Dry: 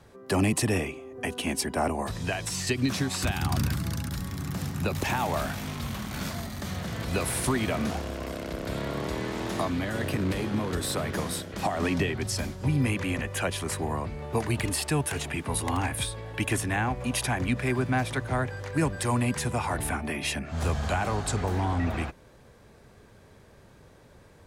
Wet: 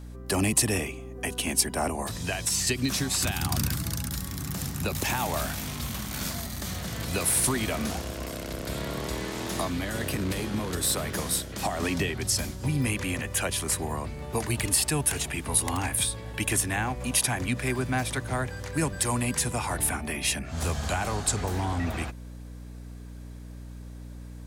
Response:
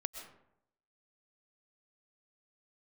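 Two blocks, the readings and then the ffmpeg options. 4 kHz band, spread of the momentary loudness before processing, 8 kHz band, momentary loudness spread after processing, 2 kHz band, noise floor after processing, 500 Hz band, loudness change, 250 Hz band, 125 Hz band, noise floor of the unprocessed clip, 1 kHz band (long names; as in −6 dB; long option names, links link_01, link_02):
+3.5 dB, 7 LU, +7.5 dB, 10 LU, 0.0 dB, −41 dBFS, −2.0 dB, +1.5 dB, −2.0 dB, −1.5 dB, −54 dBFS, −1.5 dB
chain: -af "aeval=exprs='val(0)+0.0126*(sin(2*PI*60*n/s)+sin(2*PI*2*60*n/s)/2+sin(2*PI*3*60*n/s)/3+sin(2*PI*4*60*n/s)/4+sin(2*PI*5*60*n/s)/5)':channel_layout=same,highshelf=frequency=4400:gain=12,volume=-2dB"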